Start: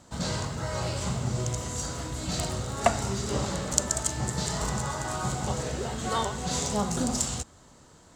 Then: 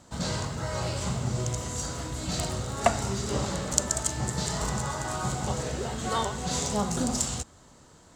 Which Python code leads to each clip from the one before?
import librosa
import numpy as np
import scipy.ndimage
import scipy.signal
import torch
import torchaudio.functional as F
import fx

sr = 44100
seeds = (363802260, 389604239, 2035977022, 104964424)

y = x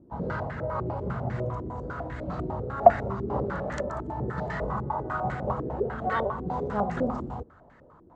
y = fx.filter_held_lowpass(x, sr, hz=10.0, low_hz=350.0, high_hz=1800.0)
y = y * librosa.db_to_amplitude(-2.5)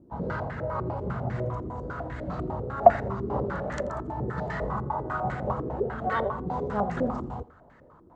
y = x + 10.0 ** (-21.0 / 20.0) * np.pad(x, (int(84 * sr / 1000.0), 0))[:len(x)]